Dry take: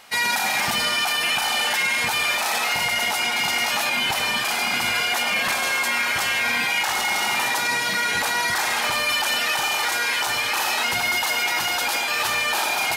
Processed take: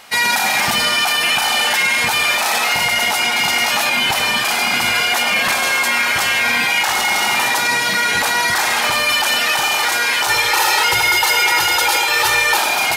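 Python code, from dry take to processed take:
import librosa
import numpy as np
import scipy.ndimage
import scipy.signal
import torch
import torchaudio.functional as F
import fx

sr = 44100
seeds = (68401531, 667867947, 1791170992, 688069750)

y = fx.comb(x, sr, ms=2.2, depth=0.79, at=(10.28, 12.57))
y = F.gain(torch.from_numpy(y), 6.0).numpy()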